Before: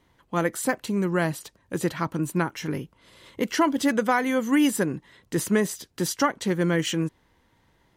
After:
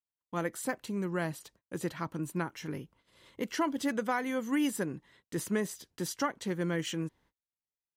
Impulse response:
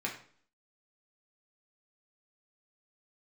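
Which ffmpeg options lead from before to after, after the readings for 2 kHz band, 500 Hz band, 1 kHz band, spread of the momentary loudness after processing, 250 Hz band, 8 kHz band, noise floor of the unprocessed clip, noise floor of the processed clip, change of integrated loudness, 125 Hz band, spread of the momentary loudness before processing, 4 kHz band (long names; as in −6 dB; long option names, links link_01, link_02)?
−9.0 dB, −9.0 dB, −9.0 dB, 10 LU, −9.0 dB, −9.0 dB, −65 dBFS, below −85 dBFS, −9.0 dB, −9.0 dB, 10 LU, −9.0 dB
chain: -af "agate=range=-37dB:threshold=-53dB:ratio=16:detection=peak,volume=-9dB"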